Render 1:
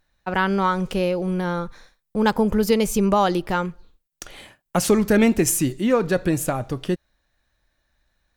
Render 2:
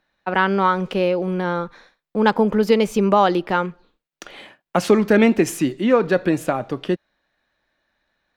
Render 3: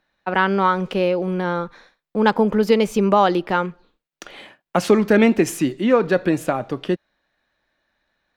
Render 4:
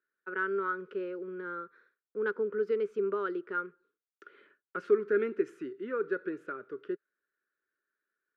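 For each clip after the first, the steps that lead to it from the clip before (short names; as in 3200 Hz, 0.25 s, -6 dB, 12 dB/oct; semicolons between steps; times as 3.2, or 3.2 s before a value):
three-band isolator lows -17 dB, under 170 Hz, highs -15 dB, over 4400 Hz; gain +3.5 dB
nothing audible
double band-pass 760 Hz, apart 1.8 oct; gain -7 dB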